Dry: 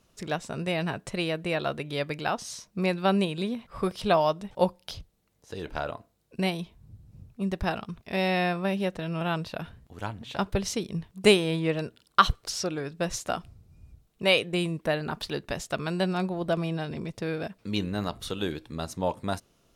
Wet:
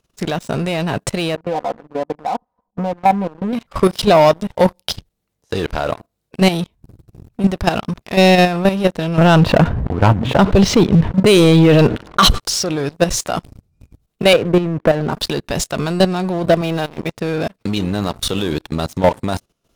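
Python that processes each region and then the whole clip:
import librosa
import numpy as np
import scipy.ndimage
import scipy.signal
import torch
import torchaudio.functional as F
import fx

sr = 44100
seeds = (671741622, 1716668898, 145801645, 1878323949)

y = fx.chain(x, sr, fx.ladder_lowpass(hz=950.0, resonance_pct=70),
    fx.comb(ms=4.0, depth=0.88), at=(1.35, 3.53))
y = fx.chain(y, sr, fx.env_lowpass(base_hz=850.0, full_db=-18.0),
    fx.env_flatten(amount_pct=50), at=(9.18, 12.4))
y = fx.chain(y, sr, fx.lowpass(hz=1400.0, slope=12),
    fx.band_squash(depth_pct=70), at=(14.33, 15.13))
y = fx.chain(y, sr, fx.low_shelf(hz=250.0, db=-9.5),
    fx.resample_linear(factor=3), at=(16.61, 17.16))
y = fx.dynamic_eq(y, sr, hz=1800.0, q=1.1, threshold_db=-43.0, ratio=4.0, max_db=-4)
y = fx.level_steps(y, sr, step_db=13)
y = fx.leveller(y, sr, passes=3)
y = F.gain(torch.from_numpy(y), 8.5).numpy()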